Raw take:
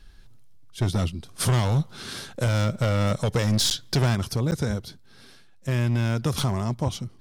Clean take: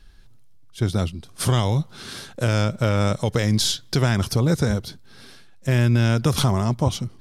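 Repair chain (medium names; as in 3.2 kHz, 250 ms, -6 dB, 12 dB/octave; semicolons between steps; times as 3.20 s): clip repair -17 dBFS; interpolate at 3.70/4.51 s, 9.4 ms; trim 0 dB, from 4.15 s +5 dB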